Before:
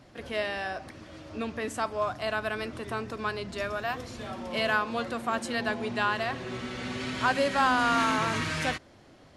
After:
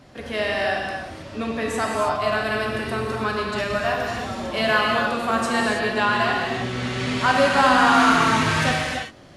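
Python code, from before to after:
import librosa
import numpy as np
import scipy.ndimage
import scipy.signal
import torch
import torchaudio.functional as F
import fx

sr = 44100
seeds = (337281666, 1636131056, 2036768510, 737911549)

y = fx.rev_gated(x, sr, seeds[0], gate_ms=350, shape='flat', drr_db=-2.0)
y = y * 10.0 ** (4.5 / 20.0)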